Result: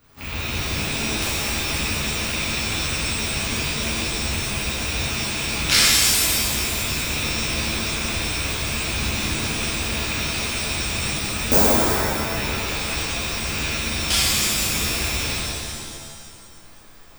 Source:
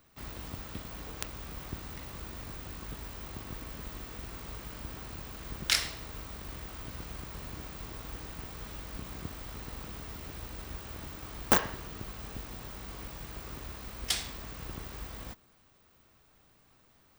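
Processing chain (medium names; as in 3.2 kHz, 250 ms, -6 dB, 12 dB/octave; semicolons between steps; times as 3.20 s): rattle on loud lows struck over -43 dBFS, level -25 dBFS; time-frequency box 11.45–12.22 s, 720–4200 Hz -10 dB; pitch-shifted reverb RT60 1.8 s, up +7 st, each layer -2 dB, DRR -10.5 dB; trim +2 dB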